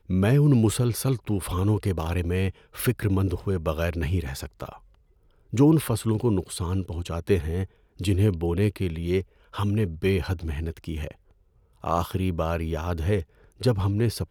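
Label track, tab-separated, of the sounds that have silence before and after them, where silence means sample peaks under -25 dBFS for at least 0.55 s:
5.540000	11.080000	sound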